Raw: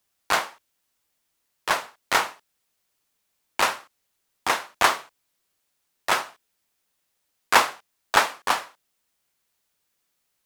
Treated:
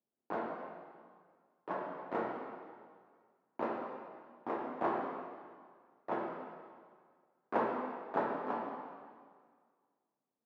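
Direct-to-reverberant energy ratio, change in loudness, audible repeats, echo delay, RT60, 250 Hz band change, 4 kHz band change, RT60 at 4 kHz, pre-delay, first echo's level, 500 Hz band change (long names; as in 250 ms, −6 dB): −2.5 dB, −15.5 dB, no echo audible, no echo audible, 1.8 s, +0.5 dB, −34.5 dB, 1.7 s, 6 ms, no echo audible, −5.0 dB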